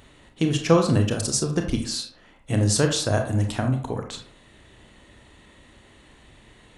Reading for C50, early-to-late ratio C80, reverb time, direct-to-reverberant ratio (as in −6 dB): 8.0 dB, 12.0 dB, 0.50 s, 4.0 dB